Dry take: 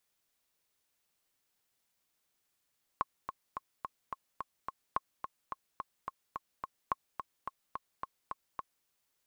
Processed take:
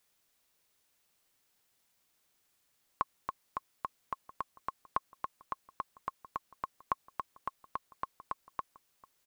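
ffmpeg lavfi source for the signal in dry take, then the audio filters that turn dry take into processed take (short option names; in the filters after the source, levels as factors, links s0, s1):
-f lavfi -i "aevalsrc='pow(10,(-16.5-8*gte(mod(t,7*60/215),60/215))/20)*sin(2*PI*1080*mod(t,60/215))*exp(-6.91*mod(t,60/215)/0.03)':d=5.86:s=44100"
-filter_complex "[0:a]asplit=2[s0][s1];[s1]alimiter=level_in=1.58:limit=0.0631:level=0:latency=1:release=56,volume=0.631,volume=0.794[s2];[s0][s2]amix=inputs=2:normalize=0,asplit=2[s3][s4];[s4]adelay=1283,volume=0.112,highshelf=f=4000:g=-28.9[s5];[s3][s5]amix=inputs=2:normalize=0"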